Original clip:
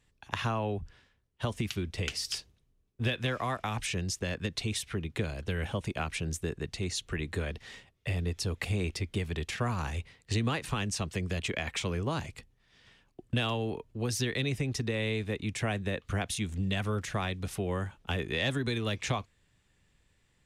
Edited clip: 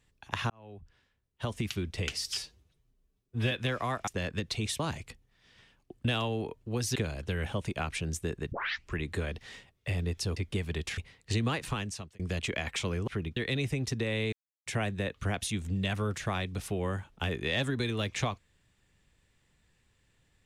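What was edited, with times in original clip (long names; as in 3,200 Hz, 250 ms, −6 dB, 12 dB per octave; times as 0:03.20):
0:00.50–0:01.69: fade in
0:02.30–0:03.11: time-stretch 1.5×
0:03.67–0:04.14: remove
0:04.86–0:05.15: swap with 0:12.08–0:14.24
0:06.71: tape start 0.44 s
0:08.56–0:08.98: remove
0:09.59–0:09.98: remove
0:10.69–0:11.20: fade out
0:15.20–0:15.54: silence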